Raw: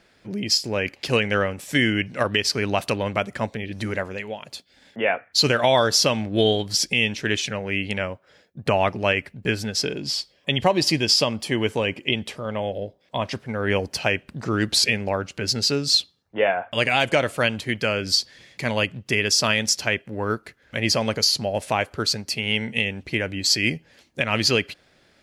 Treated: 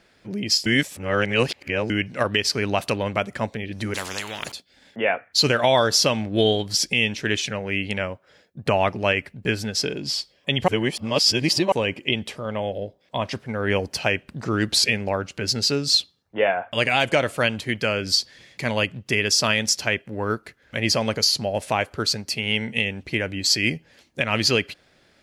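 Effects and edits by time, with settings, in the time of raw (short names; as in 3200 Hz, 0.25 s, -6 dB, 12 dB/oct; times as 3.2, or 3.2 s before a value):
0.66–1.9 reverse
3.94–4.52 spectral compressor 4:1
10.68–11.72 reverse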